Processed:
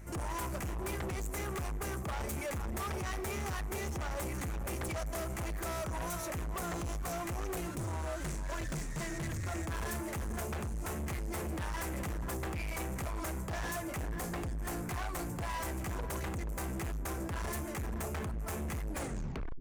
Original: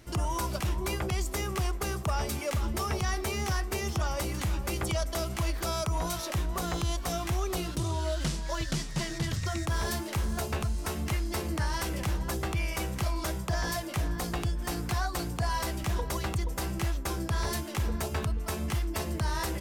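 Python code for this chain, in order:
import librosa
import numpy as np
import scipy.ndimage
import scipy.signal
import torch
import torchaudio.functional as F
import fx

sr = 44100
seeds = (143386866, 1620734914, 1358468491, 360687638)

y = fx.tape_stop_end(x, sr, length_s=0.73)
y = fx.band_shelf(y, sr, hz=3900.0, db=-12.0, octaves=1.1)
y = fx.hum_notches(y, sr, base_hz=60, count=7)
y = fx.add_hum(y, sr, base_hz=50, snr_db=18)
y = np.clip(10.0 ** (35.0 / 20.0) * y, -1.0, 1.0) / 10.0 ** (35.0 / 20.0)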